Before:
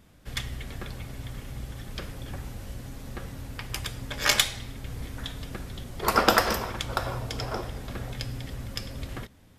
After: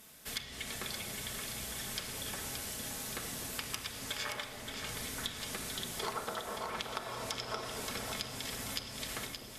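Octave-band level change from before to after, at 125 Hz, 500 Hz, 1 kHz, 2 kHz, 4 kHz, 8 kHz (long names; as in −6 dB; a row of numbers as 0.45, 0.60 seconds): −14.0, −10.0, −11.5, −9.0, −6.5, −3.0 decibels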